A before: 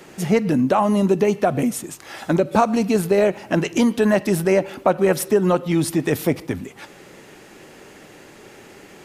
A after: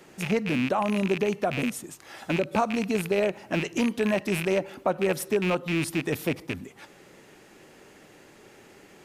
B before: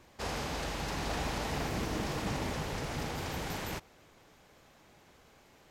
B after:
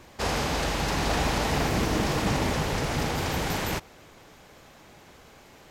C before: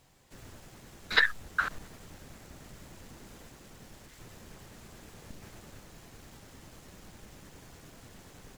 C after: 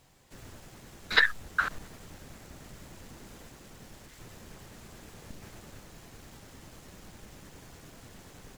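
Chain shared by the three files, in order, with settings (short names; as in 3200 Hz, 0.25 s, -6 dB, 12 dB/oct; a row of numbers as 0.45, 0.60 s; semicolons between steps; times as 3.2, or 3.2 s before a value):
rattling part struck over -24 dBFS, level -12 dBFS; match loudness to -27 LUFS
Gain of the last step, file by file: -8.0, +9.0, +1.5 dB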